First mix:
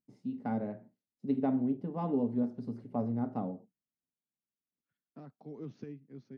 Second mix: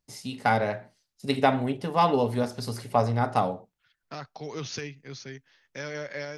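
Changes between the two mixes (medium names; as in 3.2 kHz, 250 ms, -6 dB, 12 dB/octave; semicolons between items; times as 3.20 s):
second voice: entry -1.05 s; master: remove band-pass filter 240 Hz, Q 2.3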